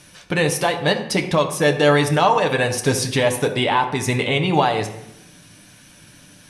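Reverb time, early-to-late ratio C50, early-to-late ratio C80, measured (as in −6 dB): 0.85 s, 9.5 dB, 12.0 dB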